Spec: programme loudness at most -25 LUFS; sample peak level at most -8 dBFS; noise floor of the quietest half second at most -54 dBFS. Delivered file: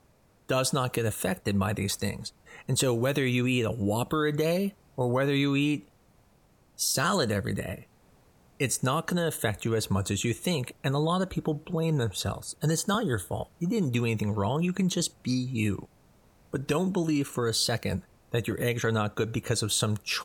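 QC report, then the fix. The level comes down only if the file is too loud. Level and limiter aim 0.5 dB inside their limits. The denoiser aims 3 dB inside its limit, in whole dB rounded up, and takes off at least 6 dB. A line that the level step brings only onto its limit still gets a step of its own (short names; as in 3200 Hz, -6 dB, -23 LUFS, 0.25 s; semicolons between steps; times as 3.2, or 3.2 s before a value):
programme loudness -28.5 LUFS: OK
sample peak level -13.0 dBFS: OK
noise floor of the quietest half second -62 dBFS: OK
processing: none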